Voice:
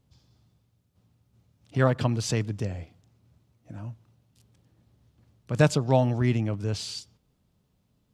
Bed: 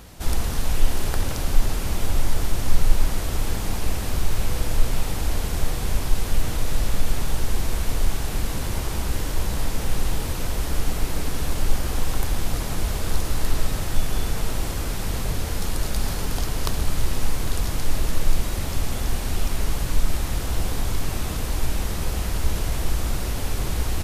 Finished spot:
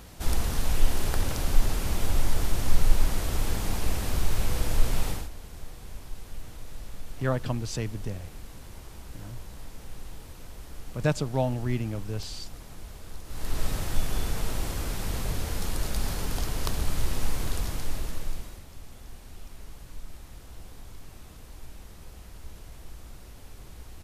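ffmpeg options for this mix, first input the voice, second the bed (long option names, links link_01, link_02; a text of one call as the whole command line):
ffmpeg -i stem1.wav -i stem2.wav -filter_complex "[0:a]adelay=5450,volume=-5dB[link_01];[1:a]volume=10.5dB,afade=type=out:start_time=5.08:duration=0.21:silence=0.177828,afade=type=in:start_time=13.26:duration=0.41:silence=0.211349,afade=type=out:start_time=17.43:duration=1.21:silence=0.158489[link_02];[link_01][link_02]amix=inputs=2:normalize=0" out.wav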